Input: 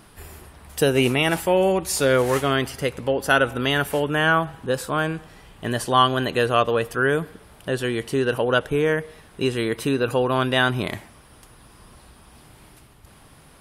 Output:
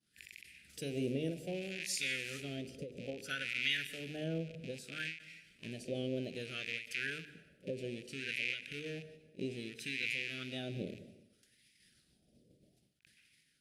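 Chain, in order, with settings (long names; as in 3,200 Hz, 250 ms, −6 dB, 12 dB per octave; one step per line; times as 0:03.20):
loose part that buzzes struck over −38 dBFS, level −15 dBFS
Chebyshev band-stop filter 180–5,400 Hz, order 2
mains-hum notches 50/100/150/200/250/300/350/400/450 Hz
downward expander −45 dBFS
parametric band 83 Hz −4.5 dB 1.8 octaves
in parallel at +2 dB: downward compressor, threshold −42 dBFS, peak gain reduction 18 dB
on the sum: LFO wah 0.62 Hz 520–2,100 Hz, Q 5.7
on a send: backwards echo 43 ms −18 dB
on the sum: dense smooth reverb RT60 0.95 s, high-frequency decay 0.8×, pre-delay 115 ms, DRR 15.5 dB
every ending faded ahead of time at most 130 dB per second
level +13 dB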